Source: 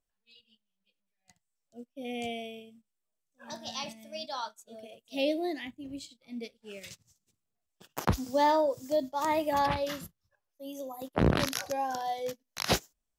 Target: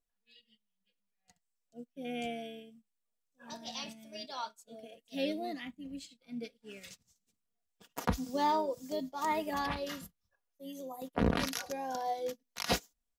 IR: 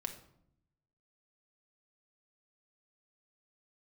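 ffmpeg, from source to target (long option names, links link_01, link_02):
-filter_complex "[0:a]asplit=2[link_01][link_02];[link_02]asetrate=29433,aresample=44100,atempo=1.49831,volume=-14dB[link_03];[link_01][link_03]amix=inputs=2:normalize=0,aecho=1:1:4.2:0.53,volume=-5dB"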